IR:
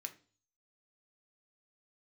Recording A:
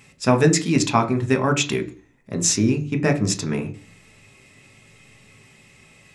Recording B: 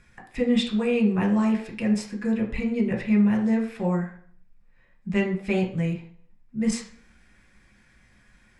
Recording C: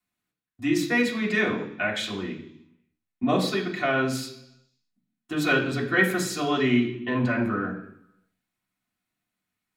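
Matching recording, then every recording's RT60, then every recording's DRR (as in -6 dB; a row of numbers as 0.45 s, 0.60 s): A; 0.40 s, 0.55 s, 0.70 s; 5.5 dB, -0.5 dB, -4.0 dB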